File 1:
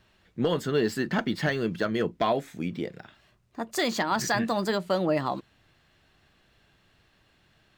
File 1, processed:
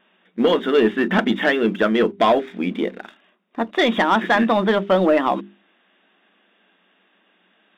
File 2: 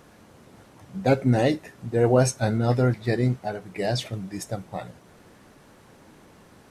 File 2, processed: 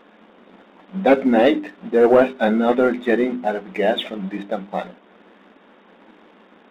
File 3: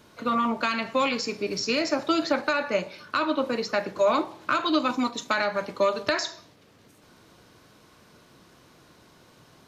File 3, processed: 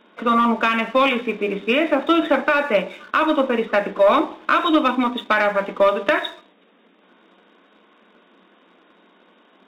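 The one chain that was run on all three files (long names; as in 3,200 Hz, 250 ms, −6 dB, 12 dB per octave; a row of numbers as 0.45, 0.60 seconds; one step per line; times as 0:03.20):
brick-wall band-pass 180–3,800 Hz
leveller curve on the samples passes 1
mains-hum notches 50/100/150/200/250/300/350/400 Hz
loudness normalisation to −19 LKFS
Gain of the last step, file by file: +7.5, +5.0, +4.5 decibels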